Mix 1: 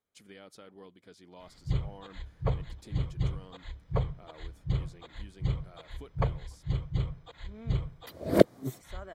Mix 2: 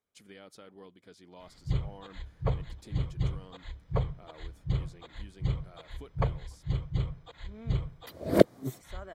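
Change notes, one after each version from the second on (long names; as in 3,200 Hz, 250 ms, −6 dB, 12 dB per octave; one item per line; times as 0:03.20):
nothing changed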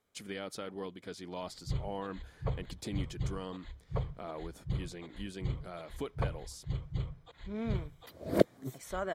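speech +10.0 dB
background −5.5 dB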